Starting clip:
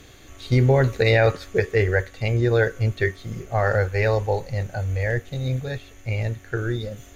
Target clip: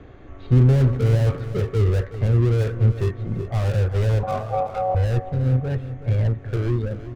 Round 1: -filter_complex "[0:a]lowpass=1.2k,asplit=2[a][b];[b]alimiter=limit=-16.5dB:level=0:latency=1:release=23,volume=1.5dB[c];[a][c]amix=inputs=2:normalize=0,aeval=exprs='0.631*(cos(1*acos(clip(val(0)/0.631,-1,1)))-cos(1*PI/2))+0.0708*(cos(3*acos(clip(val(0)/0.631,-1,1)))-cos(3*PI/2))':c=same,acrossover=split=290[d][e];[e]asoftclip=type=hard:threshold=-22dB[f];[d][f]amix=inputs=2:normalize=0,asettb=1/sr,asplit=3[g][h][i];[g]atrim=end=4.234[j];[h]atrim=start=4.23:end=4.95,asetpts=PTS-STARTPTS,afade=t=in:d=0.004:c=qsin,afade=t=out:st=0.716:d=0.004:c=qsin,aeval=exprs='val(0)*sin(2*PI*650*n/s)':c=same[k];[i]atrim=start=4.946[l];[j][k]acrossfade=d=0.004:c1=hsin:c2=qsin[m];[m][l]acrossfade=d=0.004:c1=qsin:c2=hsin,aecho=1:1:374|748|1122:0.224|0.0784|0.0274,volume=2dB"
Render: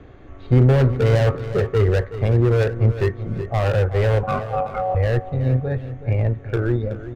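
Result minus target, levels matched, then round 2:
hard clip: distortion -6 dB
-filter_complex "[0:a]lowpass=1.2k,asplit=2[a][b];[b]alimiter=limit=-16.5dB:level=0:latency=1:release=23,volume=1.5dB[c];[a][c]amix=inputs=2:normalize=0,aeval=exprs='0.631*(cos(1*acos(clip(val(0)/0.631,-1,1)))-cos(1*PI/2))+0.0708*(cos(3*acos(clip(val(0)/0.631,-1,1)))-cos(3*PI/2))':c=same,acrossover=split=290[d][e];[e]asoftclip=type=hard:threshold=-33.5dB[f];[d][f]amix=inputs=2:normalize=0,asettb=1/sr,asplit=3[g][h][i];[g]atrim=end=4.234[j];[h]atrim=start=4.23:end=4.95,asetpts=PTS-STARTPTS,afade=t=in:d=0.004:c=qsin,afade=t=out:st=0.716:d=0.004:c=qsin,aeval=exprs='val(0)*sin(2*PI*650*n/s)':c=same[k];[i]atrim=start=4.946[l];[j][k]acrossfade=d=0.004:c1=hsin:c2=qsin[m];[m][l]acrossfade=d=0.004:c1=qsin:c2=hsin,aecho=1:1:374|748|1122:0.224|0.0784|0.0274,volume=2dB"

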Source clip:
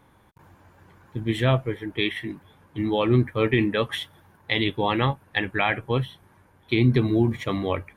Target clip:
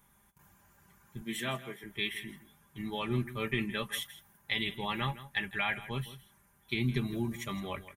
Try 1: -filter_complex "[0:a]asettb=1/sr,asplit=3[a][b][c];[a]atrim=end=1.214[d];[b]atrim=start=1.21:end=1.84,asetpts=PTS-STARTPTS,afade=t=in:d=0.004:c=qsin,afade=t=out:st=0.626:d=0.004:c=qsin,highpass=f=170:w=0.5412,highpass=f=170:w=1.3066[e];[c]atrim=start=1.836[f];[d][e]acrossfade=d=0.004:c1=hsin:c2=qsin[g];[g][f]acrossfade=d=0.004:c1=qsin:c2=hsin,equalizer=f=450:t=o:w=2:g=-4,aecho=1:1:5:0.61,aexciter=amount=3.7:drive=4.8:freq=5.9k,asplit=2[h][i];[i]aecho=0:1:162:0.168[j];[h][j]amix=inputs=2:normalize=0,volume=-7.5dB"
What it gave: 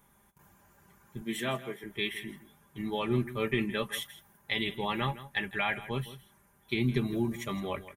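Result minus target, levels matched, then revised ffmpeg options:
500 Hz band +3.5 dB
-filter_complex "[0:a]asettb=1/sr,asplit=3[a][b][c];[a]atrim=end=1.214[d];[b]atrim=start=1.21:end=1.84,asetpts=PTS-STARTPTS,afade=t=in:d=0.004:c=qsin,afade=t=out:st=0.626:d=0.004:c=qsin,highpass=f=170:w=0.5412,highpass=f=170:w=1.3066[e];[c]atrim=start=1.836[f];[d][e]acrossfade=d=0.004:c1=hsin:c2=qsin[g];[g][f]acrossfade=d=0.004:c1=qsin:c2=hsin,equalizer=f=450:t=o:w=2:g=-10,aecho=1:1:5:0.61,aexciter=amount=3.7:drive=4.8:freq=5.9k,asplit=2[h][i];[i]aecho=0:1:162:0.168[j];[h][j]amix=inputs=2:normalize=0,volume=-7.5dB"

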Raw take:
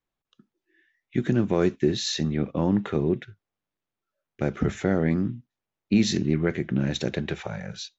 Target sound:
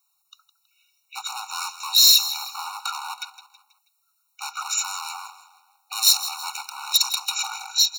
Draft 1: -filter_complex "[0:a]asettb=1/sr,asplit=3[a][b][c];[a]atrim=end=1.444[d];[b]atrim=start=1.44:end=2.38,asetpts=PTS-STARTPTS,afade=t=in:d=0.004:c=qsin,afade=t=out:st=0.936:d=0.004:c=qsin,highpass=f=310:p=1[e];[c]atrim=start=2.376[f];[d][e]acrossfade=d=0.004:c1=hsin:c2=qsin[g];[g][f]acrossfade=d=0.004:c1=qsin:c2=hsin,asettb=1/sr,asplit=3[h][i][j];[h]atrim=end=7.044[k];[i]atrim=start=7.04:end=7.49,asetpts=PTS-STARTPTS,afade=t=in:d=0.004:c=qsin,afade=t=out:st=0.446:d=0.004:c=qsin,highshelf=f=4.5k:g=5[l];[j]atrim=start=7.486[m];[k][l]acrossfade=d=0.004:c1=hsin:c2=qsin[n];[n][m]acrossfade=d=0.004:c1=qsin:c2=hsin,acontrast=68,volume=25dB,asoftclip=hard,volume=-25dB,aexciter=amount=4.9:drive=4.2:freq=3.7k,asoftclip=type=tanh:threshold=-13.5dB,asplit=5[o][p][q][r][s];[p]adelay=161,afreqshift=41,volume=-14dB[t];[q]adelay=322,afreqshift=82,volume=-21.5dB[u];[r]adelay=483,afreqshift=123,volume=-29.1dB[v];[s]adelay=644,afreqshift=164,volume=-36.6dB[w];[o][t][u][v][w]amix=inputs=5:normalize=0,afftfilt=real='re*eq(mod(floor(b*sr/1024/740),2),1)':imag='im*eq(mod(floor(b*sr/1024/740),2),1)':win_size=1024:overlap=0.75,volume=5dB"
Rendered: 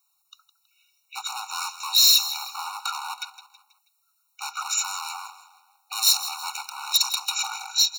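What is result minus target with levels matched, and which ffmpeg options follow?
soft clip: distortion +15 dB
-filter_complex "[0:a]asettb=1/sr,asplit=3[a][b][c];[a]atrim=end=1.444[d];[b]atrim=start=1.44:end=2.38,asetpts=PTS-STARTPTS,afade=t=in:d=0.004:c=qsin,afade=t=out:st=0.936:d=0.004:c=qsin,highpass=f=310:p=1[e];[c]atrim=start=2.376[f];[d][e]acrossfade=d=0.004:c1=hsin:c2=qsin[g];[g][f]acrossfade=d=0.004:c1=qsin:c2=hsin,asettb=1/sr,asplit=3[h][i][j];[h]atrim=end=7.044[k];[i]atrim=start=7.04:end=7.49,asetpts=PTS-STARTPTS,afade=t=in:d=0.004:c=qsin,afade=t=out:st=0.446:d=0.004:c=qsin,highshelf=f=4.5k:g=5[l];[j]atrim=start=7.486[m];[k][l]acrossfade=d=0.004:c1=hsin:c2=qsin[n];[n][m]acrossfade=d=0.004:c1=qsin:c2=hsin,acontrast=68,volume=25dB,asoftclip=hard,volume=-25dB,aexciter=amount=4.9:drive=4.2:freq=3.7k,asoftclip=type=tanh:threshold=-4dB,asplit=5[o][p][q][r][s];[p]adelay=161,afreqshift=41,volume=-14dB[t];[q]adelay=322,afreqshift=82,volume=-21.5dB[u];[r]adelay=483,afreqshift=123,volume=-29.1dB[v];[s]adelay=644,afreqshift=164,volume=-36.6dB[w];[o][t][u][v][w]amix=inputs=5:normalize=0,afftfilt=real='re*eq(mod(floor(b*sr/1024/740),2),1)':imag='im*eq(mod(floor(b*sr/1024/740),2),1)':win_size=1024:overlap=0.75,volume=5dB"

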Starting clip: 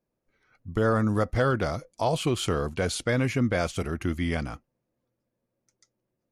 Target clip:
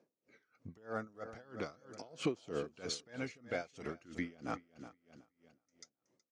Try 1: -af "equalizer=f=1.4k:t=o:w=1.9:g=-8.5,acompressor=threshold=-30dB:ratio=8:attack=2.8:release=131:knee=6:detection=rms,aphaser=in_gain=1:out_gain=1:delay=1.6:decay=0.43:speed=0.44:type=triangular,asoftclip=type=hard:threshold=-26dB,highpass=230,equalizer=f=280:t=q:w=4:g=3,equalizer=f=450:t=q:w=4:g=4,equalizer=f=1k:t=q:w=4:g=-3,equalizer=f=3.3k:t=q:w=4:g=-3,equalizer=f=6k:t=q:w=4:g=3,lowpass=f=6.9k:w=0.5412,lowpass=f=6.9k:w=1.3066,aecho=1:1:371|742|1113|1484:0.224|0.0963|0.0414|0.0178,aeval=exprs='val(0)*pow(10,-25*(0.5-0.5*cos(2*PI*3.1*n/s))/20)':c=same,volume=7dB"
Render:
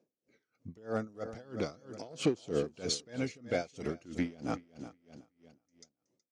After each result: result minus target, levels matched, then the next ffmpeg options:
compressor: peak gain reduction -8.5 dB; 1000 Hz band -4.0 dB
-af "equalizer=f=1.4k:t=o:w=1.9:g=-8.5,acompressor=threshold=-38.5dB:ratio=8:attack=2.8:release=131:knee=6:detection=rms,aphaser=in_gain=1:out_gain=1:delay=1.6:decay=0.43:speed=0.44:type=triangular,asoftclip=type=hard:threshold=-26dB,highpass=230,equalizer=f=280:t=q:w=4:g=3,equalizer=f=450:t=q:w=4:g=4,equalizer=f=1k:t=q:w=4:g=-3,equalizer=f=3.3k:t=q:w=4:g=-3,equalizer=f=6k:t=q:w=4:g=3,lowpass=f=6.9k:w=0.5412,lowpass=f=6.9k:w=1.3066,aecho=1:1:371|742|1113|1484:0.224|0.0963|0.0414|0.0178,aeval=exprs='val(0)*pow(10,-25*(0.5-0.5*cos(2*PI*3.1*n/s))/20)':c=same,volume=7dB"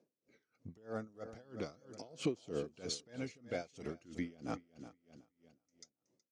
1000 Hz band -3.5 dB
-af "acompressor=threshold=-38.5dB:ratio=8:attack=2.8:release=131:knee=6:detection=rms,aphaser=in_gain=1:out_gain=1:delay=1.6:decay=0.43:speed=0.44:type=triangular,asoftclip=type=hard:threshold=-26dB,highpass=230,equalizer=f=280:t=q:w=4:g=3,equalizer=f=450:t=q:w=4:g=4,equalizer=f=1k:t=q:w=4:g=-3,equalizer=f=3.3k:t=q:w=4:g=-3,equalizer=f=6k:t=q:w=4:g=3,lowpass=f=6.9k:w=0.5412,lowpass=f=6.9k:w=1.3066,aecho=1:1:371|742|1113|1484:0.224|0.0963|0.0414|0.0178,aeval=exprs='val(0)*pow(10,-25*(0.5-0.5*cos(2*PI*3.1*n/s))/20)':c=same,volume=7dB"

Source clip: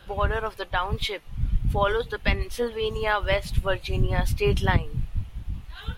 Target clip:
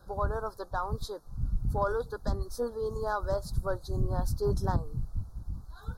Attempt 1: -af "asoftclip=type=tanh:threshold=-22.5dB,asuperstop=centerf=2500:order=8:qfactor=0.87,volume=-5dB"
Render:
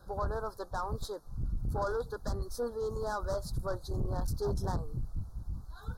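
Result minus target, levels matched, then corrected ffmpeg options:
soft clip: distortion +12 dB
-af "asoftclip=type=tanh:threshold=-12dB,asuperstop=centerf=2500:order=8:qfactor=0.87,volume=-5dB"

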